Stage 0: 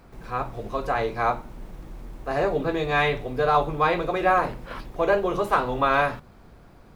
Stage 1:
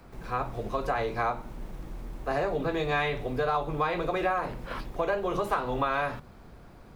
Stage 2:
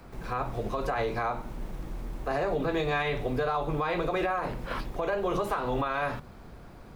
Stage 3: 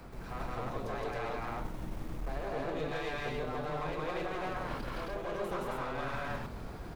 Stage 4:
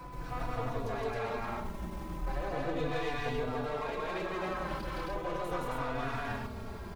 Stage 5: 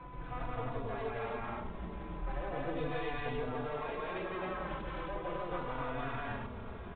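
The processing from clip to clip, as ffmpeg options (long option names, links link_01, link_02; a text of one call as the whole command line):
ffmpeg -i in.wav -filter_complex "[0:a]acrossover=split=180|470|1800[link_01][link_02][link_03][link_04];[link_02]alimiter=level_in=3dB:limit=-24dB:level=0:latency=1,volume=-3dB[link_05];[link_01][link_05][link_03][link_04]amix=inputs=4:normalize=0,acompressor=threshold=-25dB:ratio=4" out.wav
ffmpeg -i in.wav -af "alimiter=limit=-22.5dB:level=0:latency=1:release=71,volume=2.5dB" out.wav
ffmpeg -i in.wav -af "areverse,acompressor=threshold=-37dB:ratio=6,areverse,aeval=exprs='clip(val(0),-1,0.0075)':channel_layout=same,aecho=1:1:166.2|268.2:1|1" out.wav
ffmpeg -i in.wav -filter_complex "[0:a]aeval=exprs='val(0)+0.00282*sin(2*PI*1000*n/s)':channel_layout=same,asplit=2[link_01][link_02];[link_02]adelay=3.5,afreqshift=-0.38[link_03];[link_01][link_03]amix=inputs=2:normalize=1,volume=4.5dB" out.wav
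ffmpeg -i in.wav -af "aecho=1:1:840:0.158,aresample=8000,aresample=44100,volume=-3dB" out.wav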